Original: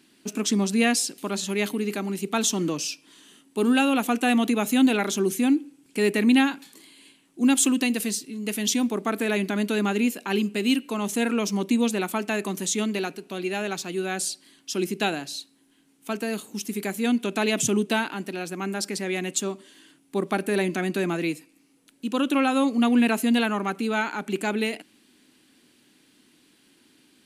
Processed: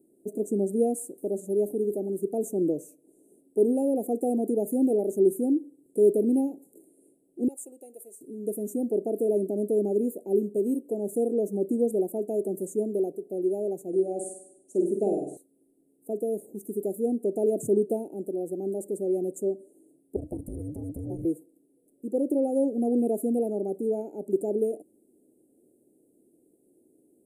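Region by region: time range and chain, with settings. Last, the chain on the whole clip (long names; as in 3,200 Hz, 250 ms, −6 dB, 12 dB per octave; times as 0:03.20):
0:07.48–0:08.21: Bessel high-pass filter 1,400 Hz + high-shelf EQ 5,500 Hz −9.5 dB
0:13.88–0:15.37: Butterworth low-pass 10,000 Hz + flutter between parallel walls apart 8.5 metres, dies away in 0.66 s
0:20.16–0:21.25: frequency shifter −470 Hz + downward compressor 5 to 1, threshold −25 dBFS + saturating transformer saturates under 160 Hz
whole clip: inverse Chebyshev band-stop filter 1,000–5,400 Hz, stop band 40 dB; flat-topped bell 550 Hz +11 dB; level −6.5 dB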